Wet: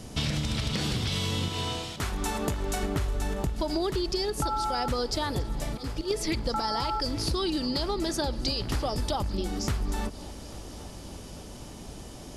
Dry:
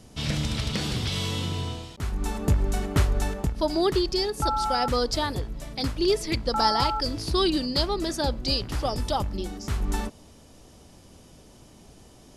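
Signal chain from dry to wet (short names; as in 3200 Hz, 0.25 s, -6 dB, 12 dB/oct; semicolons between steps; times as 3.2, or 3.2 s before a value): 1.48–2.83 low shelf 270 Hz -11 dB; 5.67–6.11 auto swell 0.468 s; limiter -17.5 dBFS, peak gain reduction 7.5 dB; compressor 10:1, threshold -33 dBFS, peak gain reduction 12.5 dB; on a send: multi-head echo 0.281 s, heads first and third, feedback 72%, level -21.5 dB; on the sum: gain +7.5 dB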